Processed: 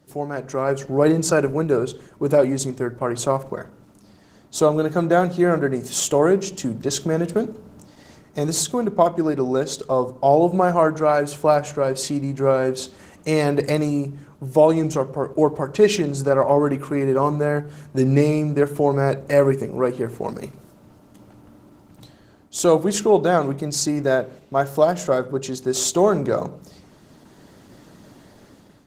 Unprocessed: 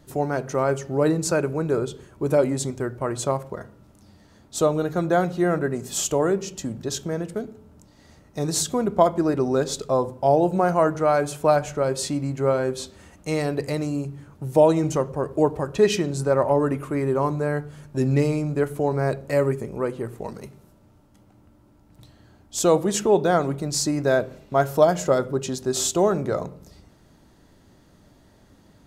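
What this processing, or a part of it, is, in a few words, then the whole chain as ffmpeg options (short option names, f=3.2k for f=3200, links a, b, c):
video call: -af "highpass=120,dynaudnorm=f=300:g=5:m=13dB,volume=-2.5dB" -ar 48000 -c:a libopus -b:a 16k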